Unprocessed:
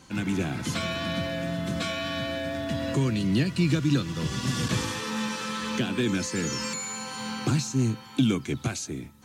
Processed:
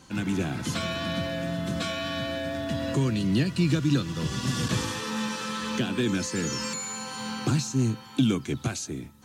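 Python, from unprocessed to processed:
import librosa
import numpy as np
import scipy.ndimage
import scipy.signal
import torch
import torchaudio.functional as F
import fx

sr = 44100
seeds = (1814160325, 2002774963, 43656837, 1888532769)

y = fx.peak_eq(x, sr, hz=2200.0, db=-3.5, octaves=0.26)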